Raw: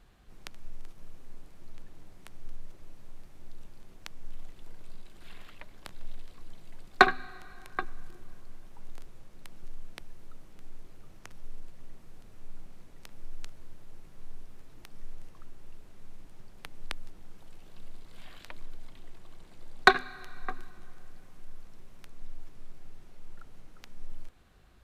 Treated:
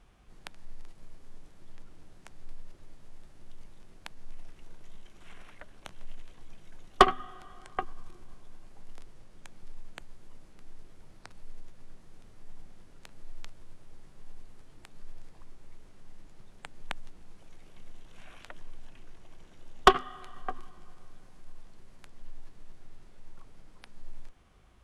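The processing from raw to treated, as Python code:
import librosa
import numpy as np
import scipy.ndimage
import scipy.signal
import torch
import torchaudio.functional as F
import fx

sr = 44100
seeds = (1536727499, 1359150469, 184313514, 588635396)

y = fx.cheby_harmonics(x, sr, harmonics=(6,), levels_db=(-19,), full_scale_db=-1.5)
y = fx.formant_shift(y, sr, semitones=-4)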